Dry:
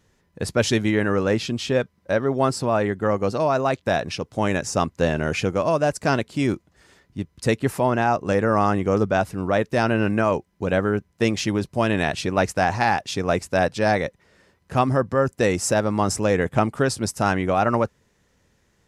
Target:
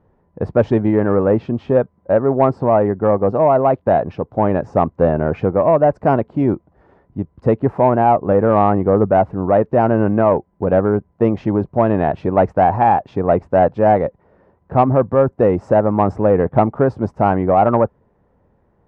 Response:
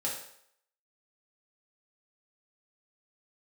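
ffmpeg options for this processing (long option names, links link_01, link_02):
-af "lowpass=frequency=840:width_type=q:width=1.5,acontrast=34"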